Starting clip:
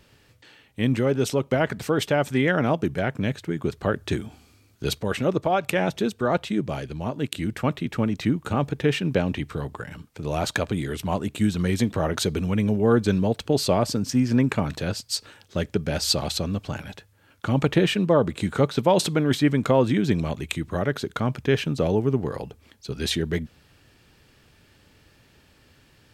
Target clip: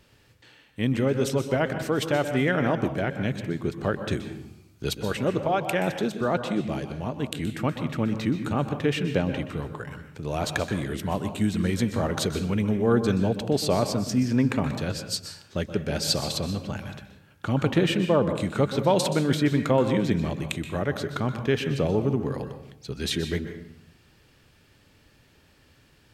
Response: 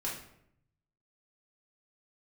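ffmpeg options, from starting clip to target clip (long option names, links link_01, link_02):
-filter_complex "[0:a]asplit=2[link_01][link_02];[1:a]atrim=start_sample=2205,adelay=124[link_03];[link_02][link_03]afir=irnorm=-1:irlink=0,volume=-11dB[link_04];[link_01][link_04]amix=inputs=2:normalize=0,volume=-2.5dB"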